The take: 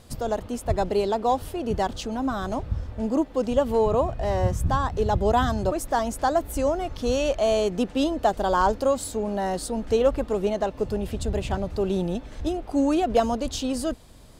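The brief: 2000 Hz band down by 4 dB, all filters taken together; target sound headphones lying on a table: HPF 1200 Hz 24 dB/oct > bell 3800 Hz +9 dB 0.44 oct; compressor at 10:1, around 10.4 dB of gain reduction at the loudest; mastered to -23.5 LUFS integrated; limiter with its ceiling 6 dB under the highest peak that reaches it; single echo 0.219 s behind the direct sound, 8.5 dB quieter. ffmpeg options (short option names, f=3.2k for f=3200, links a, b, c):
-af "equalizer=f=2k:t=o:g=-6,acompressor=threshold=-27dB:ratio=10,alimiter=limit=-23.5dB:level=0:latency=1,highpass=f=1.2k:w=0.5412,highpass=f=1.2k:w=1.3066,equalizer=f=3.8k:t=o:w=0.44:g=9,aecho=1:1:219:0.376,volume=18dB"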